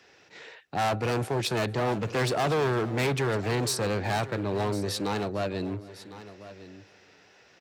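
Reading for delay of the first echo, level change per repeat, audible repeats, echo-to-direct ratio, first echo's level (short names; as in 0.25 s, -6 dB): 0.454 s, no steady repeat, 3, -14.5 dB, -22.5 dB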